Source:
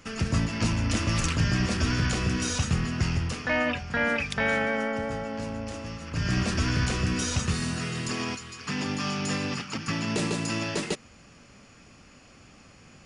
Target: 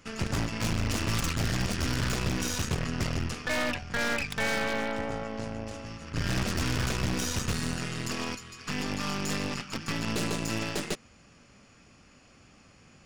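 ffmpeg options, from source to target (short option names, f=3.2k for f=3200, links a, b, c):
-filter_complex "[0:a]asettb=1/sr,asplit=3[a][b][c];[a]atrim=end=1.234[d];[b]atrim=start=1.23:end=1.95,asetpts=PTS-STARTPTS,afade=t=in:d=0.004:c=qsin,afade=t=out:st=0.716:d=0.004:c=qsin,acrossover=split=220|3000[e][f][g];[f]acompressor=threshold=-30dB:ratio=6[h];[e][h][g]amix=inputs=3:normalize=0[i];[c]atrim=start=1.946[j];[d][i]acrossfade=d=0.004:c1=hsin:c2=qsin[k];[k][j]acrossfade=d=0.004:c1=qsin:c2=hsin,aeval=exprs='0.251*(cos(1*acos(clip(val(0)/0.251,-1,1)))-cos(1*PI/2))+0.0355*(cos(6*acos(clip(val(0)/0.251,-1,1)))-cos(6*PI/2))+0.0112*(cos(7*acos(clip(val(0)/0.251,-1,1)))-cos(7*PI/2))':c=same,aeval=exprs='0.119*(abs(mod(val(0)/0.119+3,4)-2)-1)':c=same,volume=-1dB"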